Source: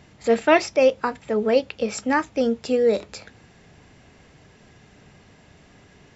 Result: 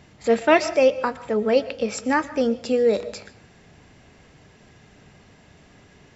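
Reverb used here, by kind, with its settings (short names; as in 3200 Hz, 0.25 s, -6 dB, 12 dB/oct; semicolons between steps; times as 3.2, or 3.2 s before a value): digital reverb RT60 0.53 s, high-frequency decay 0.55×, pre-delay 85 ms, DRR 15.5 dB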